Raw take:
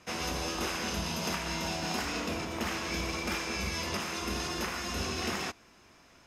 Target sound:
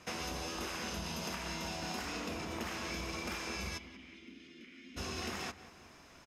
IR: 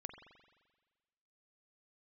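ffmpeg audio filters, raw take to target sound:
-filter_complex "[0:a]acompressor=threshold=0.0112:ratio=4,asplit=3[s0][s1][s2];[s0]afade=t=out:st=3.77:d=0.02[s3];[s1]asplit=3[s4][s5][s6];[s4]bandpass=f=270:t=q:w=8,volume=1[s7];[s5]bandpass=f=2290:t=q:w=8,volume=0.501[s8];[s6]bandpass=f=3010:t=q:w=8,volume=0.355[s9];[s7][s8][s9]amix=inputs=3:normalize=0,afade=t=in:st=3.77:d=0.02,afade=t=out:st=4.96:d=0.02[s10];[s2]afade=t=in:st=4.96:d=0.02[s11];[s3][s10][s11]amix=inputs=3:normalize=0,asplit=2[s12][s13];[s13]adelay=184,lowpass=f=2800:p=1,volume=0.188,asplit=2[s14][s15];[s15]adelay=184,lowpass=f=2800:p=1,volume=0.47,asplit=2[s16][s17];[s17]adelay=184,lowpass=f=2800:p=1,volume=0.47,asplit=2[s18][s19];[s19]adelay=184,lowpass=f=2800:p=1,volume=0.47[s20];[s12][s14][s16][s18][s20]amix=inputs=5:normalize=0,volume=1.12"

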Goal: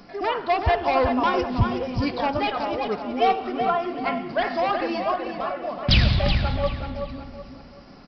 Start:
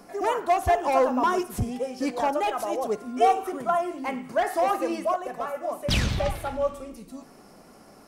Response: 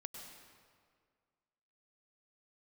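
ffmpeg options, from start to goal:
-filter_complex "[0:a]bass=f=250:g=10,treble=f=4000:g=-4,crystalizer=i=6.5:c=0,asplit=2[s0][s1];[s1]adelay=376,lowpass=f=3500:p=1,volume=0.501,asplit=2[s2][s3];[s3]adelay=376,lowpass=f=3500:p=1,volume=0.36,asplit=2[s4][s5];[s5]adelay=376,lowpass=f=3500:p=1,volume=0.36,asplit=2[s6][s7];[s7]adelay=376,lowpass=f=3500:p=1,volume=0.36[s8];[s0][s2][s4][s6][s8]amix=inputs=5:normalize=0,asplit=2[s9][s10];[1:a]atrim=start_sample=2205[s11];[s10][s11]afir=irnorm=-1:irlink=0,volume=0.355[s12];[s9][s12]amix=inputs=2:normalize=0,aresample=11025,aresample=44100,volume=0.631"

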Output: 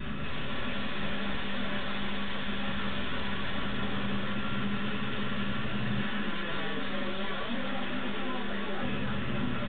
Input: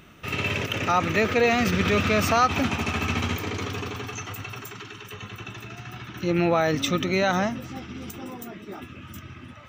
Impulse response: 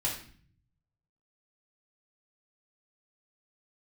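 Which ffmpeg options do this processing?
-filter_complex "[0:a]asettb=1/sr,asplit=3[s0][s1][s2];[s0]atrim=end=6.014[s3];[s1]atrim=start=6.01:end=8.83,asetpts=PTS-STARTPTS,afade=t=in:d=0.004:c=qsin,afade=t=out:st=2.816:d=0.004:c=qsin,highpass=410[s4];[s2]atrim=start=8.826[s5];[s3][s4]acrossfade=d=0.004:c1=hsin:c2=qsin[s6];[s6][s5]acrossfade=d=0.004:c1=qsin:c2=hsin,acompressor=threshold=0.0126:ratio=1.5,aeval=exprs='0.15*sin(PI/2*8.91*val(0)/0.15)':c=same,aeval=exprs='(tanh(44.7*val(0)+0.6)-tanh(0.6))/44.7':c=same,asplit=9[s7][s8][s9][s10][s11][s12][s13][s14][s15];[s8]adelay=317,afreqshift=100,volume=0.668[s16];[s9]adelay=634,afreqshift=200,volume=0.38[s17];[s10]adelay=951,afreqshift=300,volume=0.216[s18];[s11]adelay=1268,afreqshift=400,volume=0.124[s19];[s12]adelay=1585,afreqshift=500,volume=0.0708[s20];[s13]adelay=1902,afreqshift=600,volume=0.0403[s21];[s14]adelay=2219,afreqshift=700,volume=0.0229[s22];[s15]adelay=2536,afreqshift=800,volume=0.013[s23];[s7][s16][s17][s18][s19][s20][s21][s22][s23]amix=inputs=9:normalize=0[s24];[1:a]atrim=start_sample=2205,atrim=end_sample=4410,asetrate=79380,aresample=44100[s25];[s24][s25]afir=irnorm=-1:irlink=0,aresample=8000,aresample=44100,volume=0.668"

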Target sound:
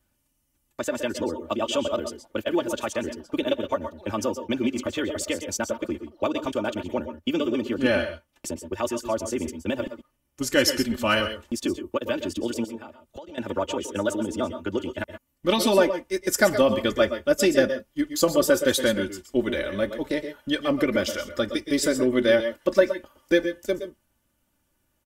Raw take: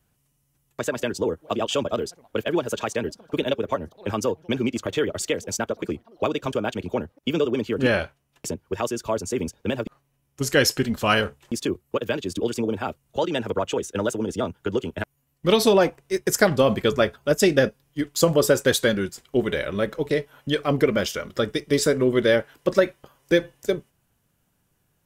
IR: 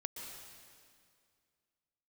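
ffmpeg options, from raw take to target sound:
-filter_complex "[0:a]aecho=1:1:3.4:0.68,asettb=1/sr,asplit=3[s0][s1][s2];[s0]atrim=end=12.644[s3];[s1]atrim=start=12.64:end=13.38,asetpts=PTS-STARTPTS,afade=t=in:d=0.004:c=qsin,afade=t=out:st=0.736:d=0.004:c=qsin,acompressor=threshold=0.0178:ratio=12[s4];[s2]atrim=start=13.376[s5];[s3][s4]acrossfade=d=0.004:c1=hsin:c2=qsin[s6];[s6][s5]acrossfade=d=0.004:c1=qsin:c2=hsin[s7];[1:a]atrim=start_sample=2205,atrim=end_sample=6174[s8];[s7][s8]afir=irnorm=-1:irlink=0"

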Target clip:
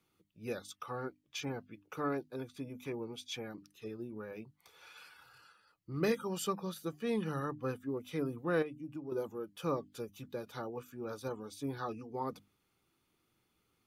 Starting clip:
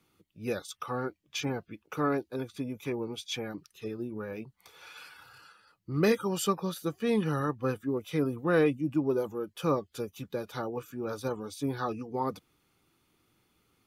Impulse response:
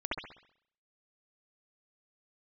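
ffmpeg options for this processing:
-filter_complex "[0:a]bandreject=f=50:t=h:w=6,bandreject=f=100:t=h:w=6,bandreject=f=150:t=h:w=6,bandreject=f=200:t=h:w=6,bandreject=f=250:t=h:w=6,bandreject=f=300:t=h:w=6,asettb=1/sr,asplit=3[s0][s1][s2];[s0]atrim=end=8.624[s3];[s1]atrim=start=8.62:end=9.12,asetpts=PTS-STARTPTS,afade=t=in:d=0.004:c=qsin,afade=t=out:st=0.496:d=0.004:c=qsin,acompressor=threshold=0.0178:ratio=4[s4];[s2]atrim=start=9.116[s5];[s3][s4]acrossfade=d=0.004:c1=hsin:c2=qsin[s6];[s6][s5]acrossfade=d=0.004:c1=qsin:c2=hsin,volume=0.473"

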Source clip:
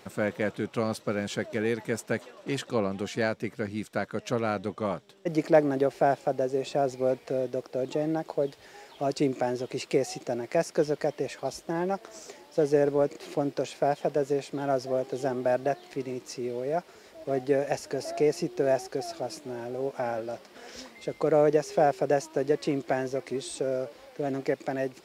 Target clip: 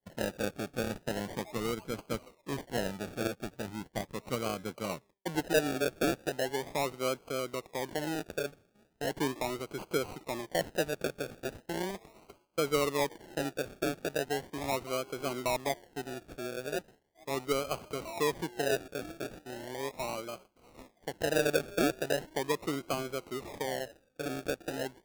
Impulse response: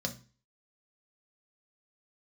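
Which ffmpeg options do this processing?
-af "agate=range=0.0224:threshold=0.0112:ratio=3:detection=peak,acrusher=samples=34:mix=1:aa=0.000001:lfo=1:lforange=20.4:lforate=0.38,volume=0.501"

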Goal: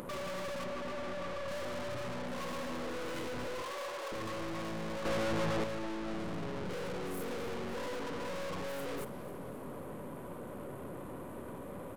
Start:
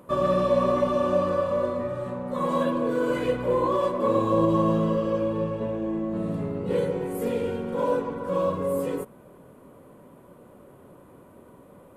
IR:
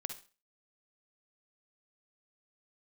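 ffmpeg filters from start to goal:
-filter_complex "[0:a]alimiter=limit=0.0794:level=0:latency=1:release=55,aeval=exprs='(tanh(251*val(0)+0.45)-tanh(0.45))/251':c=same,asettb=1/sr,asplit=3[s0][s1][s2];[s0]atrim=end=0.644[s3];[s1]atrim=start=0.64:end=1.48,asetpts=PTS-STARTPTS,afade=t=in:d=0.004:c=qsin,afade=t=out:st=0.836:d=0.004:c=qsin,aemphasis=mode=reproduction:type=50kf[s4];[s2]atrim=start=1.476[s5];[s3][s4]acrossfade=d=0.004:c1=hsin:c2=qsin[s6];[s6][s5]acrossfade=d=0.004:c1=qsin:c2=hsin,asettb=1/sr,asplit=3[s7][s8][s9];[s7]atrim=end=3.624[s10];[s8]atrim=start=3.62:end=4.12,asetpts=PTS-STARTPTS,afade=t=in:d=0.004:c=qsin,afade=t=out:st=0.496:d=0.004:c=qsin,highpass=f=430:w=0.5412,highpass=f=430:w=1.3066[s11];[s9]atrim=start=4.116[s12];[s10][s11]acrossfade=d=0.004:c1=hsin:c2=qsin[s13];[s13][s12]acrossfade=d=0.004:c1=qsin:c2=hsin,asettb=1/sr,asplit=3[s14][s15][s16];[s14]atrim=end=5.054[s17];[s15]atrim=start=5.05:end=5.64,asetpts=PTS-STARTPTS,afade=t=in:d=0.004:c=qsin,afade=t=out:st=0.586:d=0.004:c=qsin,acontrast=72[s18];[s16]atrim=start=5.636[s19];[s17][s18]acrossfade=d=0.004:c1=hsin:c2=qsin[s20];[s20][s19]acrossfade=d=0.004:c1=qsin:c2=hsin,aecho=1:1:270|540|810|1080|1350|1620:0.15|0.0883|0.0521|0.0307|0.0181|0.0107,acompressor=mode=upward:threshold=0.002:ratio=2.5,volume=2.82"

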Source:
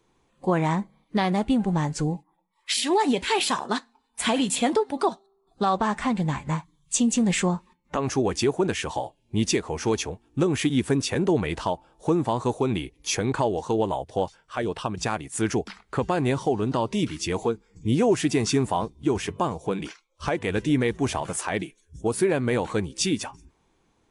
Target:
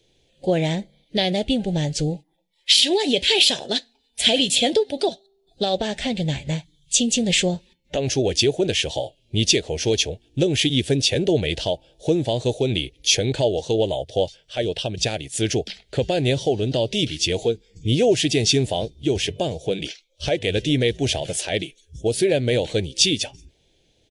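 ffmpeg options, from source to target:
-af "firequalizer=gain_entry='entry(130,0);entry(200,-7);entry(590,3);entry(1100,-28);entry(1600,-8);entry(3200,9);entry(8100,-2)':delay=0.05:min_phase=1,volume=1.78"

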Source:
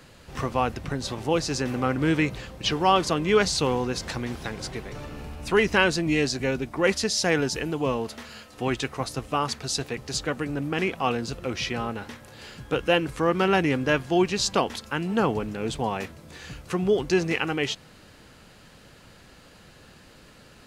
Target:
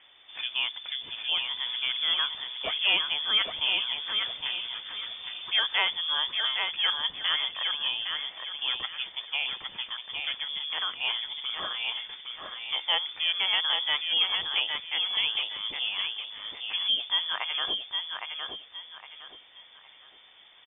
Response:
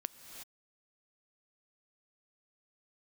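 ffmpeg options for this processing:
-af "aecho=1:1:812|1624|2436|3248:0.562|0.174|0.054|0.0168,lowpass=f=3100:t=q:w=0.5098,lowpass=f=3100:t=q:w=0.6013,lowpass=f=3100:t=q:w=0.9,lowpass=f=3100:t=q:w=2.563,afreqshift=-3600,volume=0.531"

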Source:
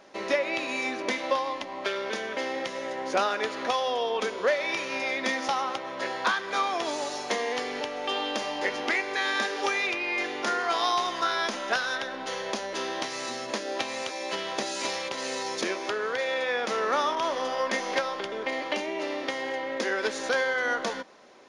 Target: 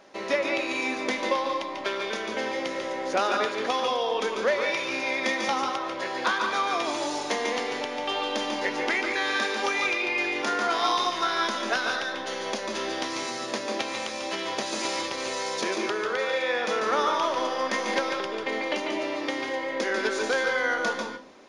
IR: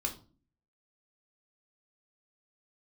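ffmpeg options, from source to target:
-filter_complex "[0:a]asplit=2[s0][s1];[1:a]atrim=start_sample=2205,adelay=143[s2];[s1][s2]afir=irnorm=-1:irlink=0,volume=0.531[s3];[s0][s3]amix=inputs=2:normalize=0"

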